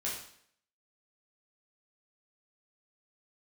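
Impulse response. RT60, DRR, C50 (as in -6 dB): 0.65 s, -6.0 dB, 3.5 dB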